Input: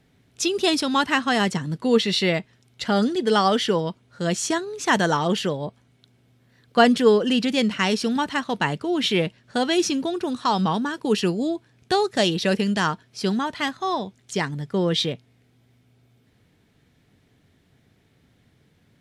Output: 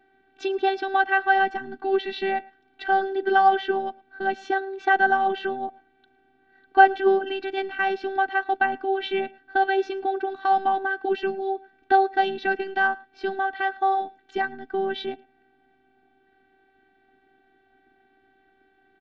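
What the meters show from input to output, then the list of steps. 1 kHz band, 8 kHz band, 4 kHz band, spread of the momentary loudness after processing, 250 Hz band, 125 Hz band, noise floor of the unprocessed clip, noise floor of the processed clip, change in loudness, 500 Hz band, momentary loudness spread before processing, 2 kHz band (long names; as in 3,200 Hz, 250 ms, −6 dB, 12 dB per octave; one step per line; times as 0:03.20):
+4.5 dB, below −25 dB, −12.0 dB, 11 LU, −11.0 dB, below −20 dB, −62 dBFS, −64 dBFS, −1.5 dB, −2.5 dB, 8 LU, +3.0 dB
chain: low-pass filter 3,500 Hz 24 dB per octave
low-shelf EQ 250 Hz −9 dB
in parallel at +0.5 dB: downward compressor, threshold −34 dBFS, peak gain reduction 20 dB
on the sum: phases set to zero 388 Hz
hollow resonant body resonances 260/730/1,500 Hz, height 17 dB, ringing for 25 ms
on a send: single-tap delay 110 ms −23.5 dB
on the sum: level −9 dB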